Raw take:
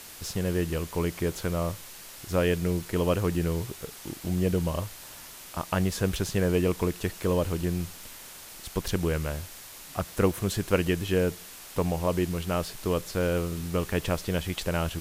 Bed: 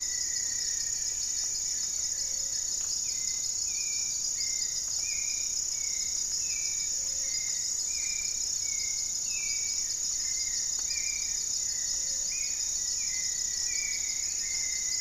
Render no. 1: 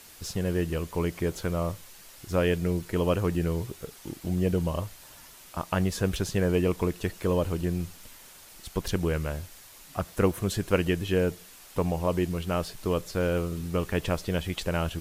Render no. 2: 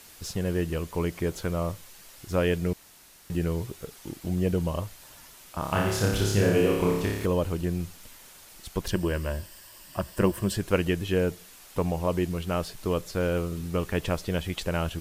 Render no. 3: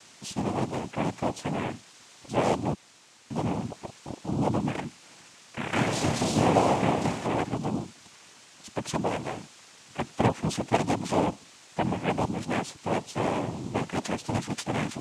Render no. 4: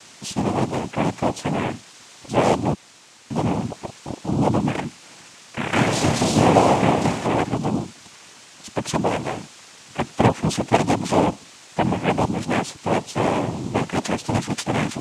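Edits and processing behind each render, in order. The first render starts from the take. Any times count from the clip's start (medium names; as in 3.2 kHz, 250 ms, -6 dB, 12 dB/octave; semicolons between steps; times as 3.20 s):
noise reduction 6 dB, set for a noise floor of -45 dBFS
2.73–3.30 s: room tone; 5.59–7.26 s: flutter echo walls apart 5 m, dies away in 0.9 s; 8.90–10.56 s: rippled EQ curve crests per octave 1.3, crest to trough 8 dB
noise-vocoded speech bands 4
trim +7 dB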